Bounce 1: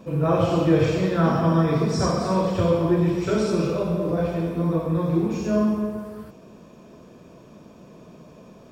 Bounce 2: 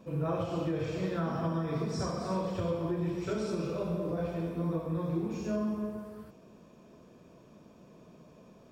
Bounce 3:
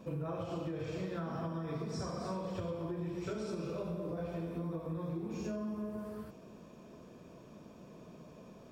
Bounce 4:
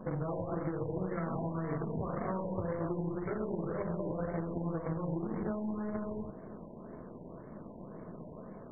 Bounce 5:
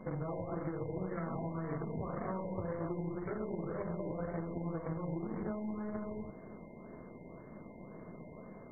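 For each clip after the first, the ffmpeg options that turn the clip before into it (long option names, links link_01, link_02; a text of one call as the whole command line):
ffmpeg -i in.wav -af "alimiter=limit=-14dB:level=0:latency=1:release=303,volume=-9dB" out.wav
ffmpeg -i in.wav -af "acompressor=threshold=-38dB:ratio=6,volume=2dB" out.wav
ffmpeg -i in.wav -af "acompressor=threshold=-41dB:ratio=2,aeval=exprs='0.0282*(cos(1*acos(clip(val(0)/0.0282,-1,1)))-cos(1*PI/2))+0.0112*(cos(2*acos(clip(val(0)/0.0282,-1,1)))-cos(2*PI/2))+0.00316*(cos(8*acos(clip(val(0)/0.0282,-1,1)))-cos(8*PI/2))':channel_layout=same,afftfilt=real='re*lt(b*sr/1024,1000*pow(2300/1000,0.5+0.5*sin(2*PI*1.9*pts/sr)))':imag='im*lt(b*sr/1024,1000*pow(2300/1000,0.5+0.5*sin(2*PI*1.9*pts/sr)))':win_size=1024:overlap=0.75,volume=6dB" out.wav
ffmpeg -i in.wav -af "aeval=exprs='val(0)+0.000708*sin(2*PI*2100*n/s)':channel_layout=same,volume=-3dB" out.wav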